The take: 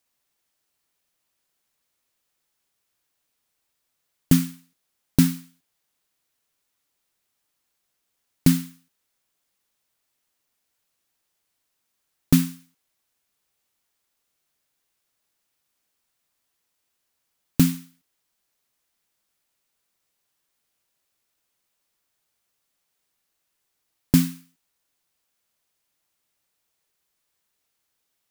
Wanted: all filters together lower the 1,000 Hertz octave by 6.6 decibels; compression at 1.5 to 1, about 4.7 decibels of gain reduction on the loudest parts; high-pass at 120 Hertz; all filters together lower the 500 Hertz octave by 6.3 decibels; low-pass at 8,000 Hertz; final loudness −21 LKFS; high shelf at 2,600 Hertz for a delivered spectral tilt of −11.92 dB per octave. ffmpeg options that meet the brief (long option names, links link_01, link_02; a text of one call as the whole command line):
ffmpeg -i in.wav -af "highpass=120,lowpass=8000,equalizer=frequency=500:width_type=o:gain=-8.5,equalizer=frequency=1000:width_type=o:gain=-5.5,highshelf=frequency=2600:gain=-6,acompressor=threshold=-27dB:ratio=1.5,volume=9dB" out.wav